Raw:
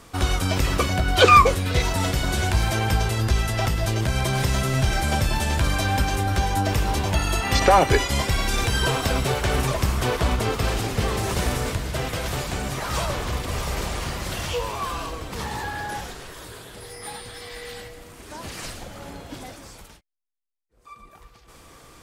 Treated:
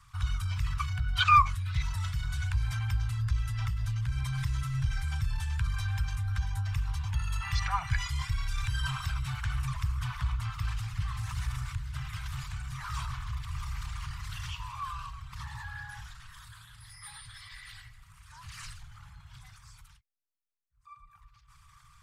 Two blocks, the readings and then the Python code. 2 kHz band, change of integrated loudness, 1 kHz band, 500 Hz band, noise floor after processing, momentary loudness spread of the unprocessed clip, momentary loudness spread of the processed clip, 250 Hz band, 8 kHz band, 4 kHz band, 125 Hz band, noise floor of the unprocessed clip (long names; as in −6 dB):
−11.5 dB, −10.0 dB, −10.0 dB, below −40 dB, −61 dBFS, 17 LU, 15 LU, −19.5 dB, −16.5 dB, −12.5 dB, −7.0 dB, −51 dBFS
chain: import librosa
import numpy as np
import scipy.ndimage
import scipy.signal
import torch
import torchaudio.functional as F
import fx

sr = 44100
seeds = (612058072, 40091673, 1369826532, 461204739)

y = fx.envelope_sharpen(x, sr, power=1.5)
y = scipy.signal.sosfilt(scipy.signal.ellip(3, 1.0, 60, [130.0, 1100.0], 'bandstop', fs=sr, output='sos'), y)
y = y * 10.0 ** (-7.0 / 20.0)